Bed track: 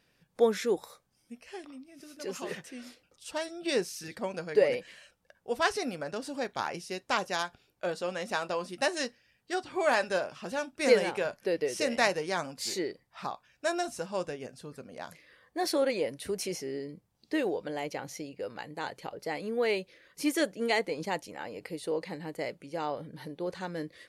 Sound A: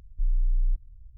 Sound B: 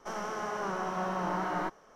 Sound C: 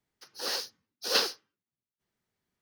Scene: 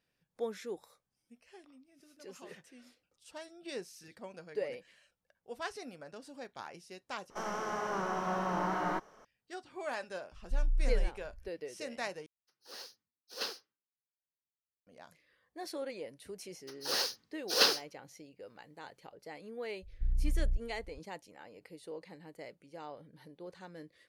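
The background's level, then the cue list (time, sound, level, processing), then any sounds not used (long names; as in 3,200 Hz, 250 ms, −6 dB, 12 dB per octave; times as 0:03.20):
bed track −12.5 dB
0:07.30: overwrite with B −1 dB
0:10.32: mix in A −5.5 dB
0:12.26: overwrite with C −15.5 dB + multiband upward and downward expander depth 40%
0:16.46: mix in C
0:19.82: mix in A −2.5 dB + one-sided soft clipper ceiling −33 dBFS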